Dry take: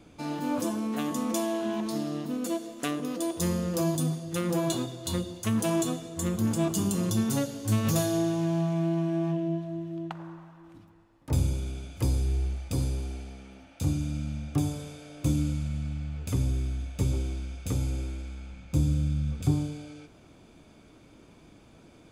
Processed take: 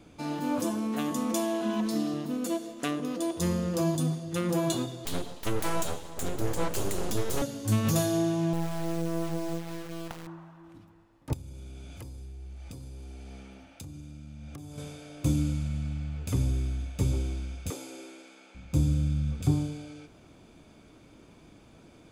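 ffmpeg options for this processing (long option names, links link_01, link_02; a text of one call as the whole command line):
ffmpeg -i in.wav -filter_complex "[0:a]asettb=1/sr,asplit=3[link_01][link_02][link_03];[link_01]atrim=end=1.614[link_04];[link_02]atrim=start=1.61:end=2.14,asetpts=PTS-STARTPTS,afade=type=in:duration=0.004:curve=qsin,afade=type=out:start_time=0.526:duration=0.004:curve=qsin,aecho=1:1:4:0.65,atrim=end_sample=23373[link_05];[link_03]atrim=start=2.136[link_06];[link_04][link_05]acrossfade=duration=0.004:curve1=hsin:curve2=qsin[link_07];[link_07][link_06]acrossfade=duration=0.004:curve1=qsin:curve2=hsin,asettb=1/sr,asplit=3[link_08][link_09][link_10];[link_08]atrim=end=2.724[link_11];[link_09]atrim=start=2.72:end=4.49,asetpts=PTS-STARTPTS,afade=type=in:duration=0.004:curve=qsin,afade=type=out:start_time=1.766:duration=0.004:curve=qsin,highshelf=frequency=8900:gain=-6.5[link_12];[link_10]atrim=start=4.486[link_13];[link_11][link_12]acrossfade=duration=0.004:curve1=hsin:curve2=qsin[link_14];[link_14][link_13]acrossfade=duration=0.004:curve1=qsin:curve2=hsin,asettb=1/sr,asplit=3[link_15][link_16][link_17];[link_15]atrim=end=5.054[link_18];[link_16]atrim=start=5.05:end=7.42,asetpts=PTS-STARTPTS,afade=type=in:duration=0.004:curve=qsin,afade=type=out:start_time=2.366:duration=0.004:curve=qsin,aeval=exprs='abs(val(0))':channel_layout=same[link_19];[link_17]atrim=start=7.416[link_20];[link_18][link_19]acrossfade=duration=0.004:curve1=hsin:curve2=qsin[link_21];[link_21][link_20]acrossfade=duration=0.004:curve1=qsin:curve2=hsin,asettb=1/sr,asplit=3[link_22][link_23][link_24];[link_22]atrim=end=8.534[link_25];[link_23]atrim=start=8.53:end=10.27,asetpts=PTS-STARTPTS,afade=type=in:duration=0.004:curve=qsin,afade=type=out:start_time=1.736:duration=0.004:curve=qsin,acrusher=bits=4:dc=4:mix=0:aa=0.000001[link_26];[link_24]atrim=start=10.266[link_27];[link_25][link_26]acrossfade=duration=0.004:curve1=hsin:curve2=qsin[link_28];[link_28][link_27]acrossfade=duration=0.004:curve1=qsin:curve2=hsin,asettb=1/sr,asplit=3[link_29][link_30][link_31];[link_29]atrim=end=11.334[link_32];[link_30]atrim=start=11.33:end=14.78,asetpts=PTS-STARTPTS,afade=type=in:duration=0.004:curve=qsin,afade=type=out:start_time=3.446:duration=0.004:curve=qsin,acompressor=threshold=-39dB:ratio=16:attack=3.2:release=140:knee=1:detection=peak[link_33];[link_31]atrim=start=14.776[link_34];[link_32][link_33]acrossfade=duration=0.004:curve1=hsin:curve2=qsin[link_35];[link_35][link_34]acrossfade=duration=0.004:curve1=qsin:curve2=hsin,asettb=1/sr,asplit=3[link_36][link_37][link_38];[link_36]atrim=end=17.704[link_39];[link_37]atrim=start=17.7:end=18.55,asetpts=PTS-STARTPTS,afade=type=in:duration=0.004:curve=qsin,afade=type=out:start_time=0.846:duration=0.004:curve=qsin,highpass=frequency=320:width=0.5412,highpass=frequency=320:width=1.3066[link_40];[link_38]atrim=start=18.546[link_41];[link_39][link_40]acrossfade=duration=0.004:curve1=hsin:curve2=qsin[link_42];[link_42][link_41]acrossfade=duration=0.004:curve1=qsin:curve2=hsin" out.wav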